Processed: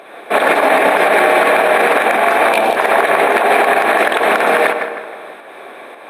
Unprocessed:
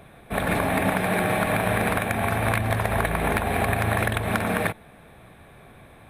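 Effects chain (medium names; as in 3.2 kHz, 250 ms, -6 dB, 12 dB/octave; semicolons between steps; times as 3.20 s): high-pass 350 Hz 24 dB/octave; time-frequency box 2.53–2.76 s, 990–2300 Hz -12 dB; low-pass 3.7 kHz 6 dB/octave; in parallel at +3 dB: volume shaper 111 bpm, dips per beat 1, -16 dB, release 221 ms; on the sum: tape echo 158 ms, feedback 51%, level -11 dB, low-pass 2.7 kHz; on a send at -19 dB: reverberation RT60 1.4 s, pre-delay 100 ms; on the sum: loudness maximiser +11.5 dB; trim -1 dB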